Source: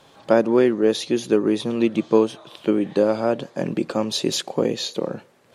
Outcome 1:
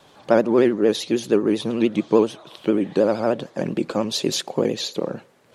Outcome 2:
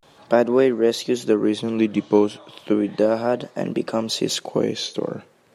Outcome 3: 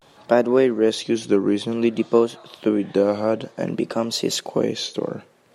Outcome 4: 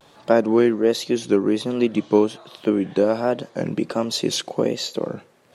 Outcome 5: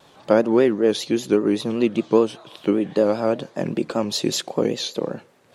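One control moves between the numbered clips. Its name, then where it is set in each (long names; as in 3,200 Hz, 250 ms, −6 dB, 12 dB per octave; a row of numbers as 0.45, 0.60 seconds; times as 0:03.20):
pitch vibrato, speed: 13, 0.35, 0.55, 1.3, 5.1 Hertz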